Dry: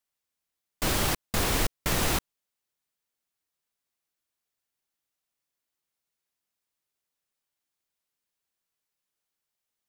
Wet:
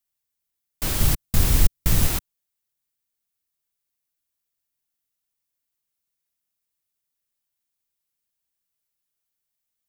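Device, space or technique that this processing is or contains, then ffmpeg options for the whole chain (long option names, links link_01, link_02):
smiley-face EQ: -filter_complex "[0:a]lowshelf=frequency=130:gain=6.5,equalizer=frequency=690:width_type=o:width=3:gain=-3.5,highshelf=frequency=9800:gain=9,asettb=1/sr,asplit=3[link_01][link_02][link_03];[link_01]atrim=end=1.004[link_04];[link_02]atrim=start=1:end=2.07,asetpts=PTS-STARTPTS,afade=type=in:duration=0.004:curve=qsin,afade=type=out:start_time=1.066:duration=0.004:curve=qsin,bass=frequency=250:gain=9,treble=frequency=4000:gain=2[link_05];[link_03]atrim=start=2.066[link_06];[link_04][link_05]acrossfade=duration=0.004:curve1=hsin:curve2=qsin[link_07];[link_07][link_06]acrossfade=duration=0.004:curve1=qsin:curve2=hsin,volume=-1.5dB"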